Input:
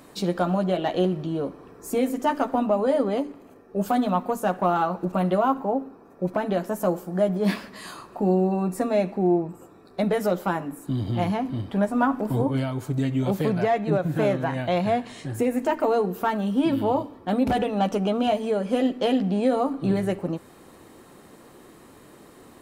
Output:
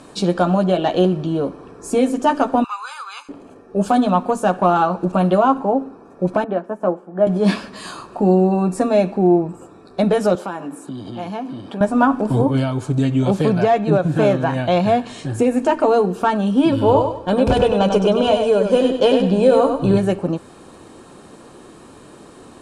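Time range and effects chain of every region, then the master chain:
0:02.64–0:03.29: inverse Chebyshev high-pass filter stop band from 200 Hz, stop band 80 dB + comb filter 0.8 ms, depth 99%
0:06.44–0:07.27: three-way crossover with the lows and the highs turned down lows −16 dB, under 180 Hz, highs −21 dB, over 2,300 Hz + expander for the loud parts, over −34 dBFS
0:10.35–0:11.81: downward compressor 3 to 1, threshold −31 dBFS + high-pass filter 210 Hz
0:16.72–0:19.98: low-shelf EQ 120 Hz +6 dB + comb filter 2 ms, depth 46% + repeating echo 97 ms, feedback 31%, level −6 dB
whole clip: Butterworth low-pass 10,000 Hz 36 dB per octave; notch filter 2,000 Hz, Q 5.9; level +7 dB

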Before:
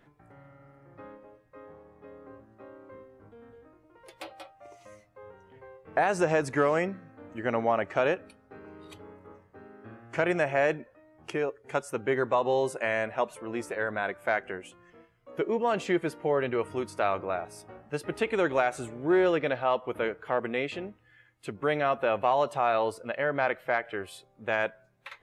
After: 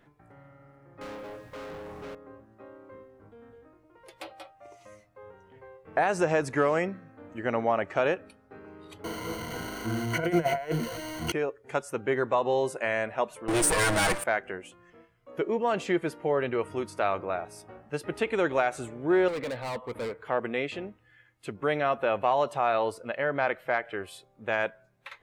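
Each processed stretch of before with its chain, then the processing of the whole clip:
0:01.01–0:02.15: high-pass filter 49 Hz + leveller curve on the samples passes 5
0:09.04–0:11.32: converter with a step at zero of −37.5 dBFS + compressor whose output falls as the input rises −29 dBFS, ratio −0.5 + EQ curve with evenly spaced ripples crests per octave 1.9, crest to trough 17 dB
0:13.48–0:14.24: lower of the sound and its delayed copy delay 6.3 ms + leveller curve on the samples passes 5 + parametric band 9,000 Hz +15 dB 0.28 octaves
0:19.28–0:20.24: gain into a clipping stage and back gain 31.5 dB + EQ curve with evenly spaced ripples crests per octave 0.97, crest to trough 6 dB
whole clip: no processing

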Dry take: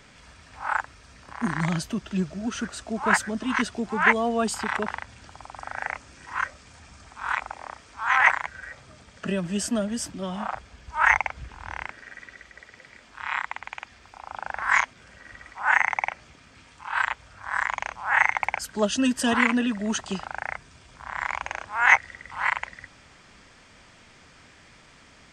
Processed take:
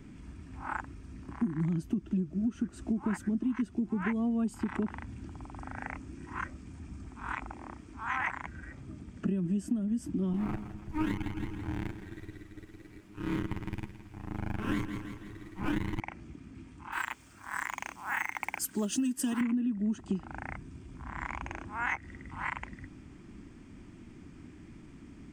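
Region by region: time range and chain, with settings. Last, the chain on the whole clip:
0:10.33–0:16.00: lower of the sound and its delayed copy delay 9.6 ms + notch filter 230 Hz, Q 6.6 + repeating echo 165 ms, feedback 47%, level −13 dB
0:16.92–0:19.41: RIAA equalisation recording + log-companded quantiser 6 bits
whole clip: drawn EQ curve 140 Hz 0 dB, 330 Hz +6 dB, 510 Hz −17 dB, 1,000 Hz −15 dB, 1,700 Hz −18 dB, 2,500 Hz −16 dB, 4,100 Hz −23 dB, 6,700 Hz −18 dB, 12,000 Hz −12 dB; downward compressor 12 to 1, threshold −34 dBFS; level +6.5 dB

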